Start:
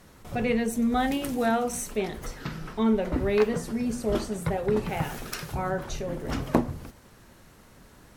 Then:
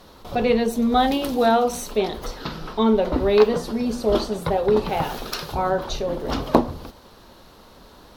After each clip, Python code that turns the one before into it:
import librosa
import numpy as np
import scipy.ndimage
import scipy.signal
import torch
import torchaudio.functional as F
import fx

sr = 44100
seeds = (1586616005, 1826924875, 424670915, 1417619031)

y = fx.graphic_eq(x, sr, hz=(125, 500, 1000, 2000, 4000, 8000), db=(-7, 3, 5, -7, 10, -9))
y = y * 10.0 ** (5.0 / 20.0)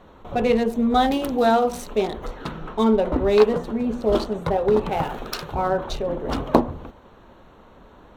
y = fx.wiener(x, sr, points=9)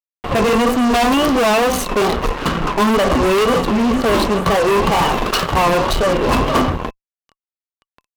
y = fx.fuzz(x, sr, gain_db=33.0, gate_db=-38.0)
y = fx.small_body(y, sr, hz=(1100.0, 2800.0), ring_ms=45, db=11)
y = fx.wow_flutter(y, sr, seeds[0], rate_hz=2.1, depth_cents=110.0)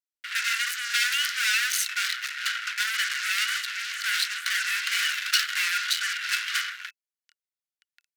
y = scipy.signal.sosfilt(scipy.signal.cheby1(6, 3, 1400.0, 'highpass', fs=sr, output='sos'), x)